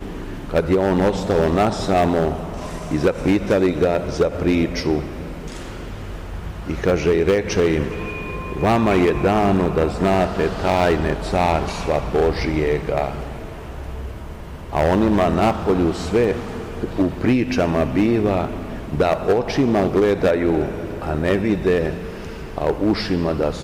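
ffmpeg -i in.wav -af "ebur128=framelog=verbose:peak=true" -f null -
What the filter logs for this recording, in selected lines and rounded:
Integrated loudness:
  I:         -19.7 LUFS
  Threshold: -30.4 LUFS
Loudness range:
  LRA:         3.5 LU
  Threshold: -40.3 LUFS
  LRA low:   -22.4 LUFS
  LRA high:  -18.9 LUFS
True peak:
  Peak:       -7.1 dBFS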